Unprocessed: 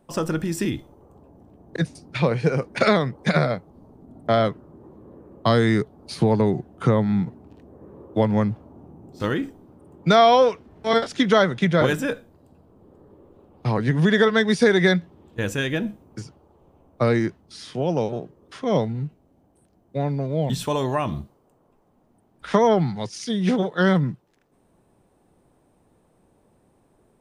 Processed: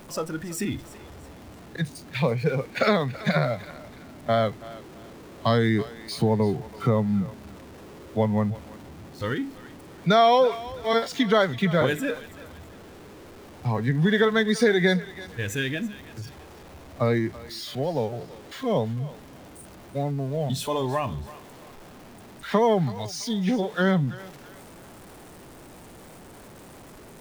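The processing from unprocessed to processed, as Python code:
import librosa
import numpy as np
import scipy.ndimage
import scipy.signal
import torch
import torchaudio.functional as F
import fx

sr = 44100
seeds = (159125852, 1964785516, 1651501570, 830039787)

y = x + 0.5 * 10.0 ** (-29.0 / 20.0) * np.sign(x)
y = fx.noise_reduce_blind(y, sr, reduce_db=8)
y = fx.echo_thinned(y, sr, ms=331, feedback_pct=40, hz=590.0, wet_db=-16)
y = y * librosa.db_to_amplitude(-3.5)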